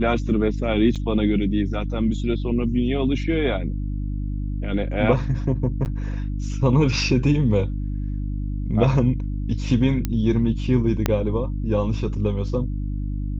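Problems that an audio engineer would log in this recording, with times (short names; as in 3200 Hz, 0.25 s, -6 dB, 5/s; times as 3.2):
hum 50 Hz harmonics 6 -26 dBFS
0.95–0.96 gap 6.7 ms
5.85–5.86 gap 9.5 ms
10.05 pop -10 dBFS
11.06 pop -5 dBFS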